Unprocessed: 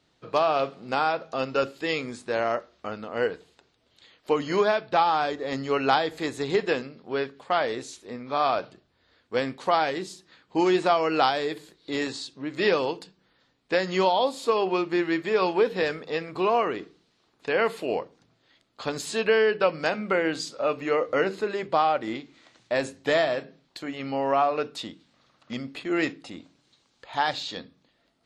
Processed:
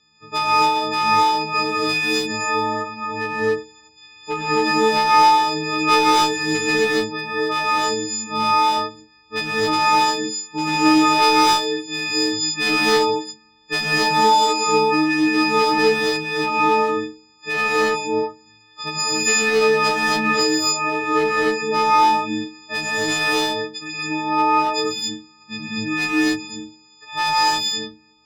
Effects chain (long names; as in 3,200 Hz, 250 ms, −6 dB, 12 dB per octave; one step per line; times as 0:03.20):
every partial snapped to a pitch grid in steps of 6 semitones
low-pass filter 7,000 Hz 24 dB per octave
parametric band 610 Hz −14.5 dB 0.48 octaves
asymmetric clip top −18 dBFS
reverb whose tail is shaped and stops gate 300 ms rising, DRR −7 dB